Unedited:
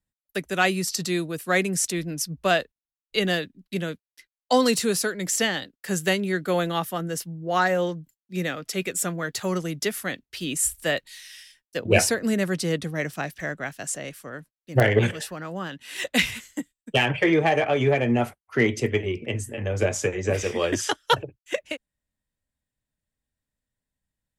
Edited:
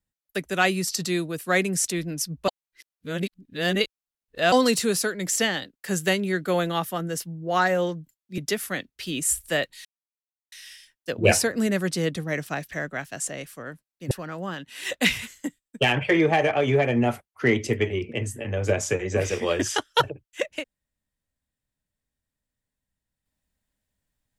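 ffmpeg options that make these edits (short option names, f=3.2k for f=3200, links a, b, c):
-filter_complex "[0:a]asplit=6[a][b][c][d][e][f];[a]atrim=end=2.482[g];[b]atrim=start=2.478:end=4.522,asetpts=PTS-STARTPTS,areverse[h];[c]atrim=start=4.518:end=8.382[i];[d]atrim=start=9.718:end=11.19,asetpts=PTS-STARTPTS,afade=t=out:st=1.468:d=0.004:c=hsin,apad=pad_dur=0.67[j];[e]atrim=start=11.19:end=14.782,asetpts=PTS-STARTPTS,afade=t=in:d=0.004:c=hsin[k];[f]atrim=start=15.238[l];[g][h]acrossfade=d=0.004:c1=hsin:c2=hsin[m];[m][i]acrossfade=d=0.004:c1=hsin:c2=hsin[n];[j][k]concat=n=2:v=0:a=1[o];[n][o]acrossfade=d=0.004:c1=hsin:c2=hsin[p];[p][l]acrossfade=d=0.004:c1=hsin:c2=hsin"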